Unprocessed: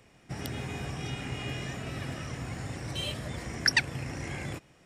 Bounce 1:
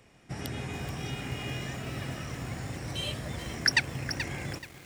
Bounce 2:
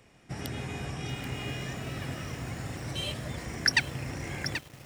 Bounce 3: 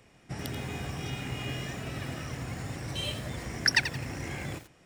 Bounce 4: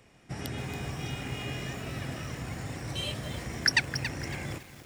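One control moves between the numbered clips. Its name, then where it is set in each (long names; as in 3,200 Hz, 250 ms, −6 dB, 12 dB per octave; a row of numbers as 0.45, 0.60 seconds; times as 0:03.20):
feedback echo at a low word length, delay time: 430, 783, 86, 278 milliseconds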